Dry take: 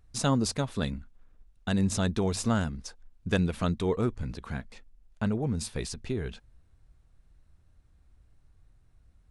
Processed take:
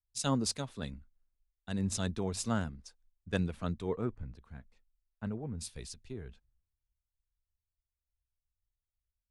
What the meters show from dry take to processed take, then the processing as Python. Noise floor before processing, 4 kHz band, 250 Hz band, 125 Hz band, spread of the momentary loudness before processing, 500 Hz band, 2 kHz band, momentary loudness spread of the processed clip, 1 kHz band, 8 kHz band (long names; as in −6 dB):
−63 dBFS, −4.5 dB, −7.0 dB, −7.5 dB, 13 LU, −7.0 dB, −7.5 dB, 20 LU, −6.5 dB, −3.0 dB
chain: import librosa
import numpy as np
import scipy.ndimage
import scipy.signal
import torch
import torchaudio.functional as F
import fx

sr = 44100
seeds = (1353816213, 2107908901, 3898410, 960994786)

y = fx.band_widen(x, sr, depth_pct=100)
y = F.gain(torch.from_numpy(y), -8.5).numpy()